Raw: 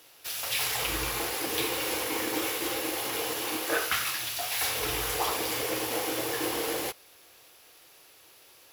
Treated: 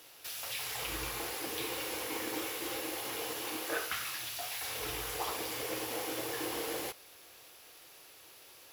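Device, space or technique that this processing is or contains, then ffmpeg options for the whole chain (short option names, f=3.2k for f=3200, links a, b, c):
de-esser from a sidechain: -filter_complex "[0:a]asplit=2[a][b];[b]highpass=6.1k,apad=whole_len=384590[c];[a][c]sidechaincompress=threshold=-44dB:ratio=3:attack=5:release=29"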